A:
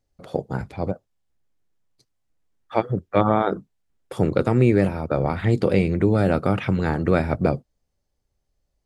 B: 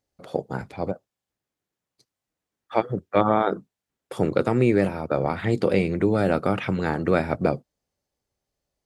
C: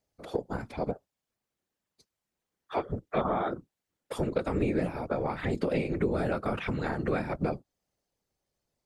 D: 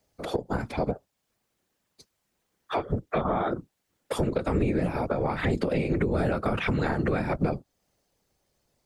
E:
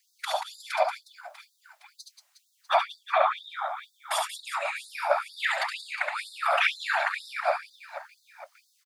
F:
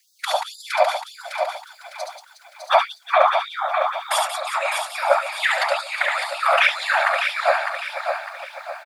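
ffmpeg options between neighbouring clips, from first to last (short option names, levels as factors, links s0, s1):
-af "highpass=f=200:p=1"
-af "acompressor=threshold=0.0355:ratio=2,afftfilt=real='hypot(re,im)*cos(2*PI*random(0))':imag='hypot(re,im)*sin(2*PI*random(1))':win_size=512:overlap=0.75,volume=1.78"
-filter_complex "[0:a]acrossover=split=160[s0][s1];[s1]acompressor=threshold=0.0316:ratio=6[s2];[s0][s2]amix=inputs=2:normalize=0,asplit=2[s3][s4];[s4]alimiter=level_in=2:limit=0.0631:level=0:latency=1:release=415,volume=0.501,volume=1.33[s5];[s3][s5]amix=inputs=2:normalize=0,volume=1.33"
-filter_complex "[0:a]asplit=2[s0][s1];[s1]aecho=0:1:70|182|361.2|647.9|1107:0.631|0.398|0.251|0.158|0.1[s2];[s0][s2]amix=inputs=2:normalize=0,afftfilt=real='re*gte(b*sr/1024,550*pow(3600/550,0.5+0.5*sin(2*PI*2.1*pts/sr)))':imag='im*gte(b*sr/1024,550*pow(3600/550,0.5+0.5*sin(2*PI*2.1*pts/sr)))':win_size=1024:overlap=0.75,volume=2.37"
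-af "afreqshift=-16,aecho=1:1:605|1210|1815|2420|3025:0.501|0.195|0.0762|0.0297|0.0116,volume=2.24"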